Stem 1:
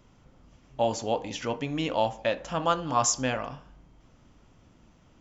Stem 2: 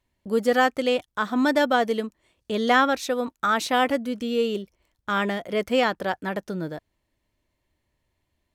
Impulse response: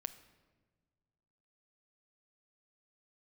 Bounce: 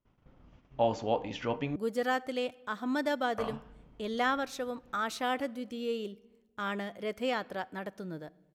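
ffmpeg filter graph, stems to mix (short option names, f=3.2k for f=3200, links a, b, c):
-filter_complex "[0:a]agate=range=-24dB:threshold=-56dB:ratio=16:detection=peak,lowpass=3.2k,volume=-2.5dB,asplit=3[a][b][c];[a]atrim=end=1.76,asetpts=PTS-STARTPTS,afade=t=out:st=1.756:d=0.004:c=hsin[d];[b]atrim=start=1.76:end=3.38,asetpts=PTS-STARTPTS,volume=0[e];[c]atrim=start=3.38,asetpts=PTS-STARTPTS,afade=t=in:d=0.004:c=hsin[f];[d][e][f]concat=n=3:v=0:a=1,asplit=2[g][h];[h]volume=-19dB[i];[1:a]adelay=1500,volume=-14dB,asplit=2[j][k];[k]volume=-3.5dB[l];[2:a]atrim=start_sample=2205[m];[i][l]amix=inputs=2:normalize=0[n];[n][m]afir=irnorm=-1:irlink=0[o];[g][j][o]amix=inputs=3:normalize=0"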